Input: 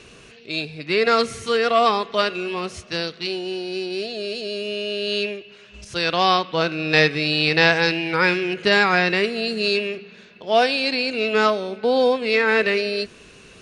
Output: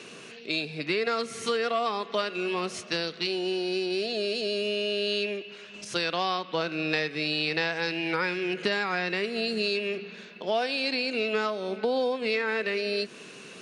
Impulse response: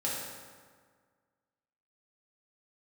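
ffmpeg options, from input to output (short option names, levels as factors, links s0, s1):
-af "highpass=f=160:w=0.5412,highpass=f=160:w=1.3066,acompressor=threshold=0.0447:ratio=5,volume=1.19"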